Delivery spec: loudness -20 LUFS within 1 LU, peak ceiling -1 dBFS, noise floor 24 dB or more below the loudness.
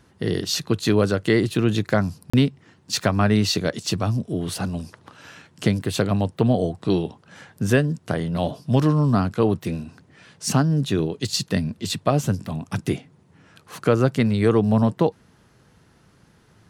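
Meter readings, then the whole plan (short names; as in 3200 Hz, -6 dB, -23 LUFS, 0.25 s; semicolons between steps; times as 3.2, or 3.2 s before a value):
dropouts 1; longest dropout 35 ms; loudness -22.5 LUFS; peak -5.0 dBFS; loudness target -20.0 LUFS
-> interpolate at 2.3, 35 ms; gain +2.5 dB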